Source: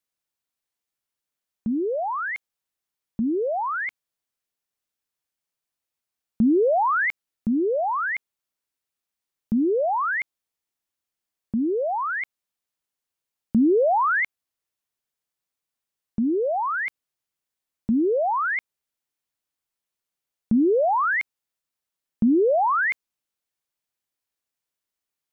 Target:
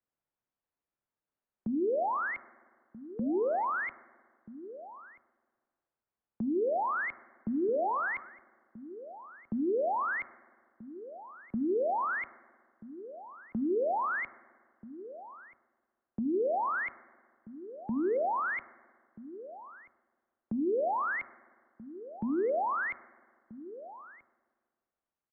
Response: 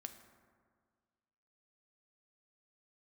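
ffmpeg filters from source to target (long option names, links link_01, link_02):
-filter_complex "[0:a]alimiter=limit=-23.5dB:level=0:latency=1,lowpass=1300,bandreject=frequency=81.56:width_type=h:width=4,bandreject=frequency=163.12:width_type=h:width=4,bandreject=frequency=244.68:width_type=h:width=4,bandreject=frequency=326.24:width_type=h:width=4,bandreject=frequency=407.8:width_type=h:width=4,bandreject=frequency=489.36:width_type=h:width=4,bandreject=frequency=570.92:width_type=h:width=4,bandreject=frequency=652.48:width_type=h:width=4,bandreject=frequency=734.04:width_type=h:width=4,bandreject=frequency=815.6:width_type=h:width=4,bandreject=frequency=897.16:width_type=h:width=4,bandreject=frequency=978.72:width_type=h:width=4,bandreject=frequency=1060.28:width_type=h:width=4,bandreject=frequency=1141.84:width_type=h:width=4,bandreject=frequency=1223.4:width_type=h:width=4,bandreject=frequency=1304.96:width_type=h:width=4,bandreject=frequency=1386.52:width_type=h:width=4,acrossover=split=110|340[link_01][link_02][link_03];[link_01]acompressor=threshold=-55dB:ratio=4[link_04];[link_02]acompressor=threshold=-39dB:ratio=4[link_05];[link_03]acompressor=threshold=-31dB:ratio=4[link_06];[link_04][link_05][link_06]amix=inputs=3:normalize=0,asplit=2[link_07][link_08];[link_08]adelay=1283,volume=-15dB,highshelf=frequency=4000:gain=-28.9[link_09];[link_07][link_09]amix=inputs=2:normalize=0,asplit=2[link_10][link_11];[1:a]atrim=start_sample=2205[link_12];[link_11][link_12]afir=irnorm=-1:irlink=0,volume=-7.5dB[link_13];[link_10][link_13]amix=inputs=2:normalize=0"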